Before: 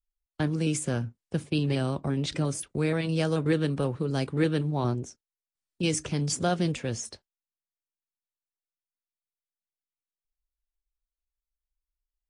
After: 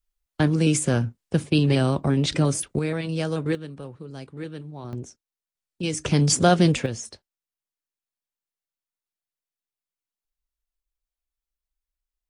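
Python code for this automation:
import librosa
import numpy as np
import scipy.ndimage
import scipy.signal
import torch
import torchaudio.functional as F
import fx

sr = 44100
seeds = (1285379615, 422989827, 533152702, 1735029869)

y = fx.gain(x, sr, db=fx.steps((0.0, 7.0), (2.79, 0.0), (3.55, -10.0), (4.93, -0.5), (6.05, 9.0), (6.86, 0.5)))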